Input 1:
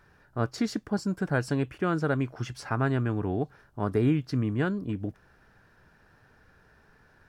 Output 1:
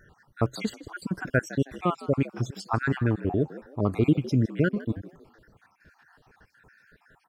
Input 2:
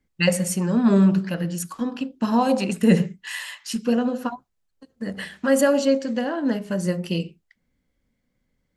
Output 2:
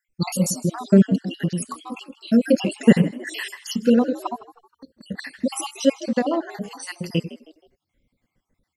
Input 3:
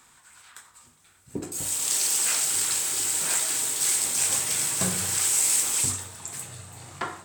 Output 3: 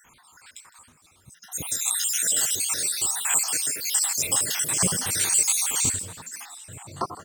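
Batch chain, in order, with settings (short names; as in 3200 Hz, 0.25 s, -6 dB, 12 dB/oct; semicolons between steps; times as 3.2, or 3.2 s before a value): random spectral dropouts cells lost 63%; frequency-shifting echo 0.158 s, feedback 35%, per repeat +72 Hz, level -17.5 dB; gain +5 dB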